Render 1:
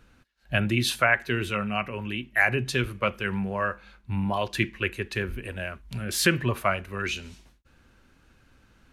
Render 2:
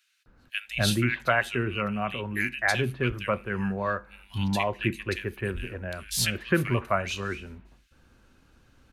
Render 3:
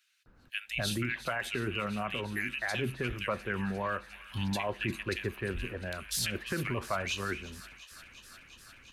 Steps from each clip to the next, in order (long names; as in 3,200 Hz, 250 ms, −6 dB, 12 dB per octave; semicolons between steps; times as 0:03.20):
multiband delay without the direct sound highs, lows 260 ms, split 2,000 Hz
brickwall limiter −20.5 dBFS, peak gain reduction 11 dB; delay with a high-pass on its return 352 ms, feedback 84%, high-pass 1,700 Hz, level −15 dB; harmonic and percussive parts rebalanced harmonic −5 dB